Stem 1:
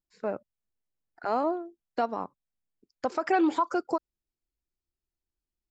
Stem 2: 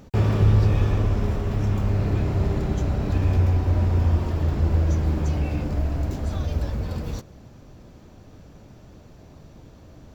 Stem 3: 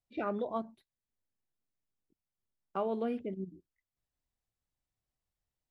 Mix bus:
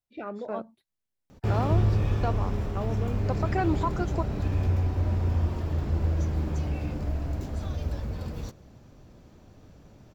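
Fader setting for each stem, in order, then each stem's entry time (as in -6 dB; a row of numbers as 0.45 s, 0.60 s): -3.5 dB, -5.5 dB, -2.0 dB; 0.25 s, 1.30 s, 0.00 s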